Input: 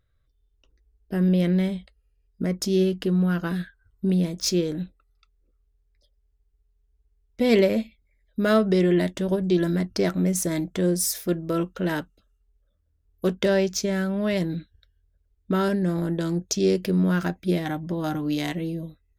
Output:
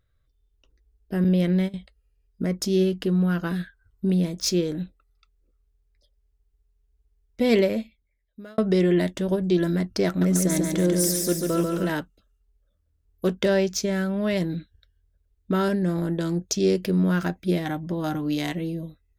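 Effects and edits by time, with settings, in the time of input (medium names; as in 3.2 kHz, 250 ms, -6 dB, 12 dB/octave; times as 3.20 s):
1.24–1.74 s: gate -24 dBFS, range -17 dB
7.44–8.58 s: fade out
10.07–11.90 s: feedback delay 142 ms, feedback 53%, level -3.5 dB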